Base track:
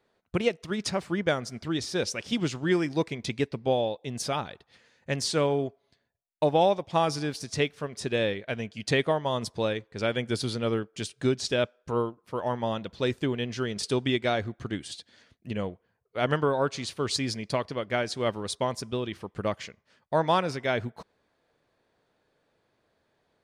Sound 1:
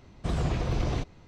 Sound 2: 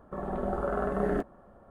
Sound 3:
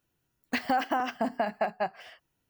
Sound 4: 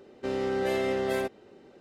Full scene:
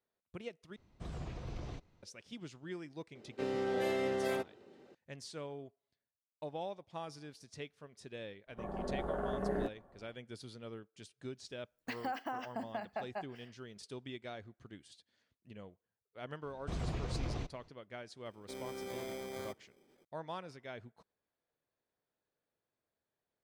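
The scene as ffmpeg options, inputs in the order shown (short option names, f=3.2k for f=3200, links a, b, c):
-filter_complex "[1:a]asplit=2[a][b];[4:a]asplit=2[c][d];[0:a]volume=-19.5dB[e];[c]highpass=86[f];[2:a]bandreject=f=1.3k:w=8.1[g];[d]acrusher=samples=16:mix=1:aa=0.000001[h];[e]asplit=2[i][j];[i]atrim=end=0.764[k];[a]atrim=end=1.27,asetpts=PTS-STARTPTS,volume=-15.5dB[l];[j]atrim=start=2.026[m];[f]atrim=end=1.8,asetpts=PTS-STARTPTS,volume=-6dB,afade=t=in:d=0.004:c=hsin,afade=t=out:st=1.796:d=0.004:c=hsin,adelay=3150[n];[g]atrim=end=1.7,asetpts=PTS-STARTPTS,volume=-7dB,afade=t=in:d=0.05,afade=t=out:st=1.65:d=0.05,adelay=8460[o];[3:a]atrim=end=2.49,asetpts=PTS-STARTPTS,volume=-12dB,afade=t=in:d=0.004:c=hsin,afade=t=out:st=2.486:d=0.004:c=hsin,adelay=11350[p];[b]atrim=end=1.27,asetpts=PTS-STARTPTS,volume=-10dB,afade=t=in:d=0.004:c=hsin,afade=t=out:st=1.266:d=0.004:c=hsin,adelay=16430[q];[h]atrim=end=1.8,asetpts=PTS-STARTPTS,volume=-15.5dB,afade=t=in:d=0.004:c=hsin,afade=t=out:st=1.796:d=0.004:c=hsin,adelay=18250[r];[k][l]acrossfade=d=0.004:c1=hsin:c2=hsin[s];[s][m]acrossfade=d=0.004:c1=hsin:c2=hsin[t];[t][n][o][p][q][r]amix=inputs=6:normalize=0"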